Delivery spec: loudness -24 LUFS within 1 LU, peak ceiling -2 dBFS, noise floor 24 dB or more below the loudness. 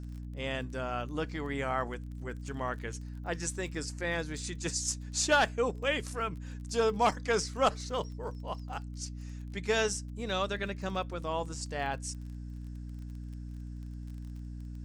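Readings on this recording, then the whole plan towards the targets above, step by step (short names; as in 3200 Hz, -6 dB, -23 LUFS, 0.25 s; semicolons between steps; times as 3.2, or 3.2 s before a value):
ticks 24/s; hum 60 Hz; harmonics up to 300 Hz; hum level -39 dBFS; loudness -34.0 LUFS; peak -14.5 dBFS; loudness target -24.0 LUFS
-> de-click; notches 60/120/180/240/300 Hz; gain +10 dB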